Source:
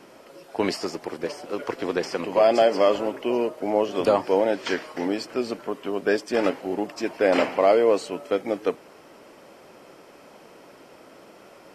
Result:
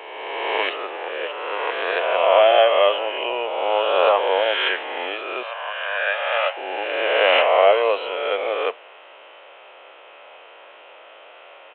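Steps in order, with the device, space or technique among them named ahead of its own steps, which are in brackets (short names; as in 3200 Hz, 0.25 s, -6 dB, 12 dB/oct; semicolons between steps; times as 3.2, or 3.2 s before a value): spectral swells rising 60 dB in 1.89 s; 5.43–6.57 elliptic high-pass 570 Hz, stop band 50 dB; musical greeting card (downsampling 8000 Hz; HPF 540 Hz 24 dB/oct; bell 2800 Hz +8 dB 0.45 oct); gain +2.5 dB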